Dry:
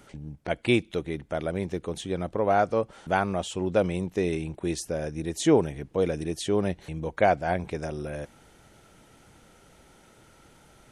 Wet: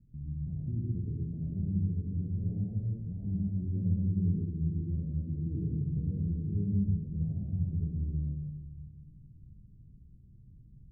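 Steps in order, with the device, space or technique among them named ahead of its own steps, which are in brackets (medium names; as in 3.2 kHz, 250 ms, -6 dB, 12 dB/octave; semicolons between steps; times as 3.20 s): club heard from the street (peak limiter -17 dBFS, peak gain reduction 8 dB; low-pass 170 Hz 24 dB/octave; reverberation RT60 1.3 s, pre-delay 64 ms, DRR -4.5 dB)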